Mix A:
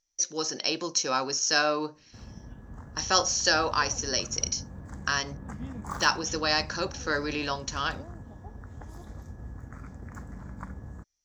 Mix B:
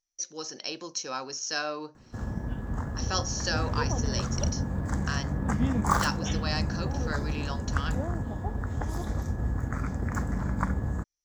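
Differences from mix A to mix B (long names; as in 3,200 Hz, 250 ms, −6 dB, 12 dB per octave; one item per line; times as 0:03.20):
speech −7.0 dB
background +12.0 dB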